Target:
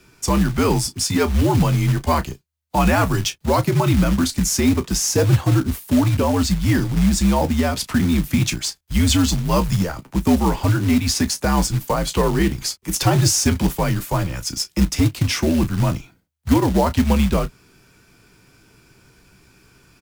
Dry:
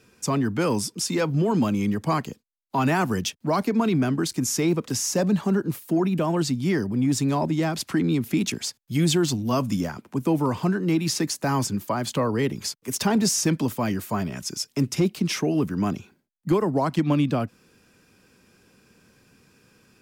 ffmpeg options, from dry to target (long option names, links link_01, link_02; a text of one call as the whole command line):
ffmpeg -i in.wav -af "aecho=1:1:15|33:0.282|0.188,acrusher=bits=4:mode=log:mix=0:aa=0.000001,afreqshift=-77,volume=5dB" out.wav